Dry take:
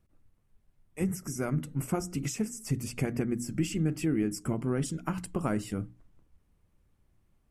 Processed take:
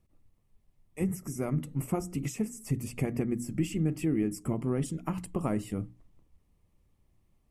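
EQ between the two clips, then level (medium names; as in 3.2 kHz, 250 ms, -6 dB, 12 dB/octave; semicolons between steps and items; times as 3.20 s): peaking EQ 1.5 kHz -11.5 dB 0.23 oct; dynamic bell 5.2 kHz, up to -7 dB, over -55 dBFS, Q 0.97; 0.0 dB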